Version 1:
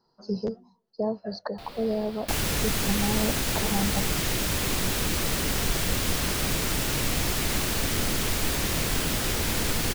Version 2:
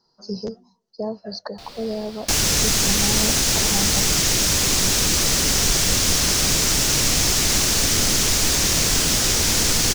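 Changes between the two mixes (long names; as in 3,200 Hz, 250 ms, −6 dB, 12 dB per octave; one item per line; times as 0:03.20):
second sound +4.0 dB
master: add parametric band 6,000 Hz +12 dB 1.1 octaves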